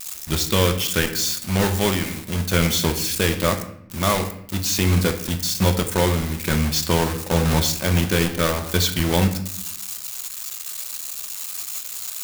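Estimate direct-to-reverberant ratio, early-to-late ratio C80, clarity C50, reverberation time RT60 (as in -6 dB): 6.0 dB, 13.5 dB, 10.5 dB, 0.70 s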